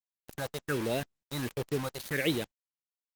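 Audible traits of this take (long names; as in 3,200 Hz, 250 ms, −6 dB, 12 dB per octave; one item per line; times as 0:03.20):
phaser sweep stages 4, 1.4 Hz, lowest notch 270–1,600 Hz
a quantiser's noise floor 6 bits, dither none
Opus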